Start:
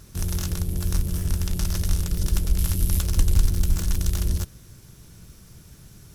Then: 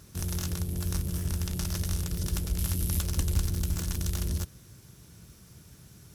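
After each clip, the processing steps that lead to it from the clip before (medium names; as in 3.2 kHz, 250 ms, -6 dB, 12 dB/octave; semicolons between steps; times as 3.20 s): high-pass 61 Hz; trim -3.5 dB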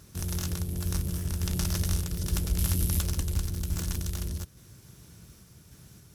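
random-step tremolo; trim +3 dB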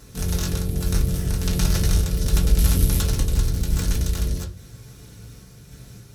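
reverberation RT60 0.30 s, pre-delay 4 ms, DRR -3 dB; trim +3.5 dB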